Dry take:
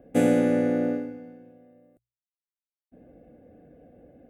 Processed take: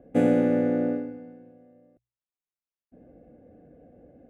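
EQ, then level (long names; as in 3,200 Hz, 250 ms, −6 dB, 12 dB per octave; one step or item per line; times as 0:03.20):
low-pass filter 1,700 Hz 6 dB per octave
0.0 dB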